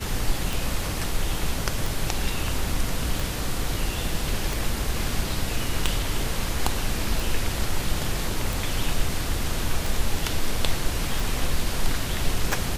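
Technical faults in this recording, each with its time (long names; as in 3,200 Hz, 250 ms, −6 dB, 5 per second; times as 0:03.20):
scratch tick 45 rpm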